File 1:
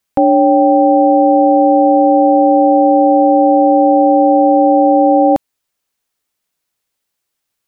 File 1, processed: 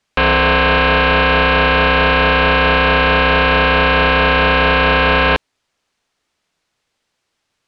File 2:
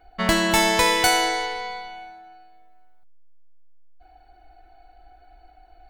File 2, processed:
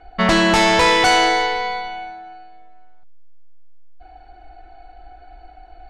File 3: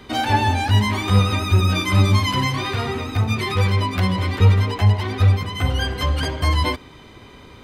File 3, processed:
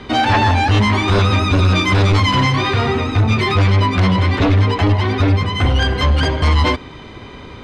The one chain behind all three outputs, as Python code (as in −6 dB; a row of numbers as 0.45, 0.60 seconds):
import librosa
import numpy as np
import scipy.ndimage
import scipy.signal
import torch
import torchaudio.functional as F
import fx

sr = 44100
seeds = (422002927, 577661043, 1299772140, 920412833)

y = fx.fold_sine(x, sr, drive_db=13, ceiling_db=-1.0)
y = fx.air_absorb(y, sr, metres=90.0)
y = y * 10.0 ** (-9 / 20.0) / np.max(np.abs(y))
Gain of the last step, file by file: −8.0, −8.0, −8.0 decibels